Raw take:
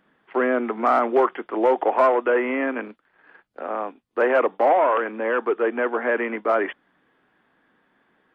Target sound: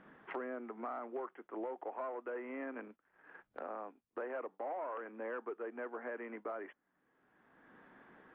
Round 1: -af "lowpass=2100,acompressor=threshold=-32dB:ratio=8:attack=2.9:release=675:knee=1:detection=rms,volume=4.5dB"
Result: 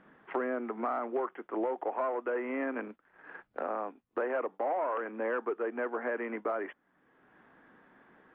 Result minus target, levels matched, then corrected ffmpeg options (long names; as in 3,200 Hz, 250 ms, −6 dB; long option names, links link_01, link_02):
downward compressor: peak gain reduction −9 dB
-af "lowpass=2100,acompressor=threshold=-42.5dB:ratio=8:attack=2.9:release=675:knee=1:detection=rms,volume=4.5dB"